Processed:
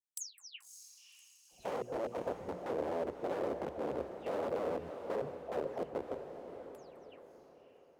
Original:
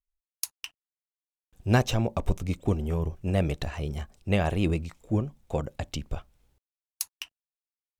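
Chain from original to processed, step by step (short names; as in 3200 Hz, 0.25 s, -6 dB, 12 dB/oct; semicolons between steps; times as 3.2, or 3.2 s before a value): spectral delay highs early, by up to 0.263 s; tilt shelf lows +9 dB; notches 60/120/180/240/300/360/420/480 Hz; compressor 2.5:1, threshold -33 dBFS, peak gain reduction 15 dB; wrapped overs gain 28.5 dB; band-pass sweep 7200 Hz -> 500 Hz, 0.28–1.77; high shelf 10000 Hz +11.5 dB; on a send: diffused feedback echo 0.585 s, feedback 46%, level -8.5 dB; on the sum: gain +4.5 dB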